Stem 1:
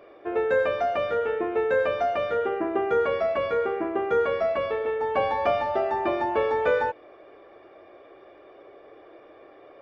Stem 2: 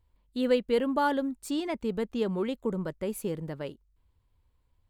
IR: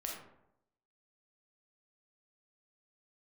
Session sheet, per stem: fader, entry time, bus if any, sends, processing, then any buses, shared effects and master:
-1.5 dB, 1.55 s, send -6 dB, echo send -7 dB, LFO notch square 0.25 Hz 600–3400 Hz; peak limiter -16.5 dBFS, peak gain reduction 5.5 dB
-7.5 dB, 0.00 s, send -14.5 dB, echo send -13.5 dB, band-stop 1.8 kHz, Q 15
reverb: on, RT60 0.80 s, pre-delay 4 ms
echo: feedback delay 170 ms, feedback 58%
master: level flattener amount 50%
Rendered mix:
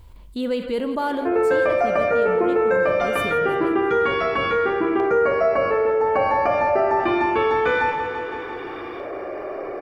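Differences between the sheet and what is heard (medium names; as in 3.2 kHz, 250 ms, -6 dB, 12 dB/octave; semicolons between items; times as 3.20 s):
stem 1: entry 1.55 s -> 1.00 s; reverb return +8.0 dB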